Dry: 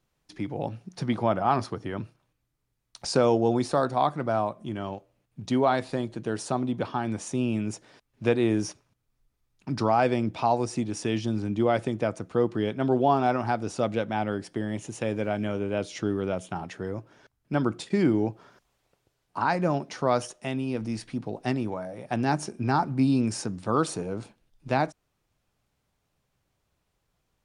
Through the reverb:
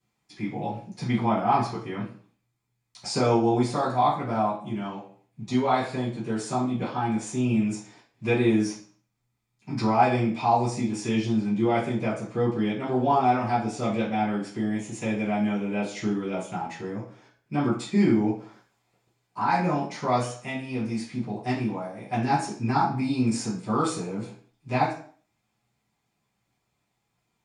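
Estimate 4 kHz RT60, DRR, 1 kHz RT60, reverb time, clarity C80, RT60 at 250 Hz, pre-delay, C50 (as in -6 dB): 0.40 s, -11.5 dB, 0.50 s, 0.50 s, 10.5 dB, 0.55 s, 3 ms, 6.5 dB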